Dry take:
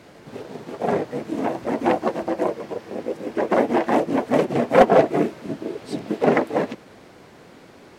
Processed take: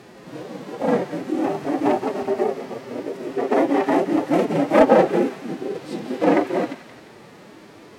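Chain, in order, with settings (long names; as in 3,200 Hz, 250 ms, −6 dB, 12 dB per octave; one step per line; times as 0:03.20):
harmonic and percussive parts rebalanced percussive −11 dB
phase-vocoder pitch shift with formants kept +3 semitones
delay with a high-pass on its return 175 ms, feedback 52%, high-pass 1,500 Hz, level −10.5 dB
level +6 dB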